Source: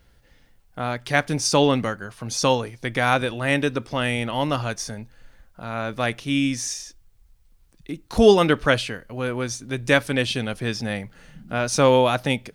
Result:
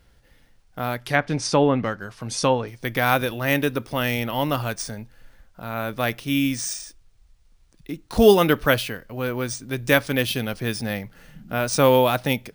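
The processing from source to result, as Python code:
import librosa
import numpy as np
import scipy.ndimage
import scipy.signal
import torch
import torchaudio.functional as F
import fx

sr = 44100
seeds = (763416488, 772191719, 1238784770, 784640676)

y = np.repeat(x[::3], 3)[:len(x)]
y = fx.env_lowpass_down(y, sr, base_hz=1700.0, full_db=-13.5, at=(0.96, 2.68))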